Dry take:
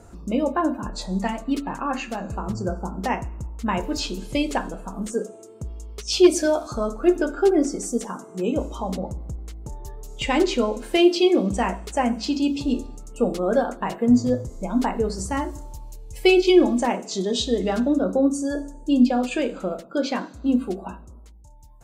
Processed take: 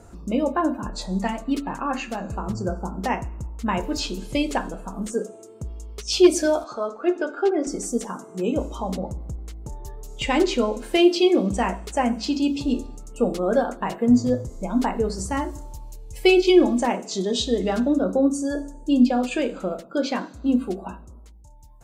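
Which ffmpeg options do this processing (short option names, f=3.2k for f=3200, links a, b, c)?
-filter_complex "[0:a]asettb=1/sr,asplit=3[a][b][c];[a]atrim=end=6.644[d];[b]atrim=start=6.64:end=7.67,asetpts=PTS-STARTPTS,afade=t=in:d=0.004:c=qsin,afade=t=out:st=1.026:d=0.004:c=qsin,highpass=390,lowpass=4.2k[e];[c]atrim=start=7.666[f];[d][e]acrossfade=d=0.004:c1=hsin:c2=qsin[g];[g][f]acrossfade=d=0.004:c1=qsin:c2=hsin"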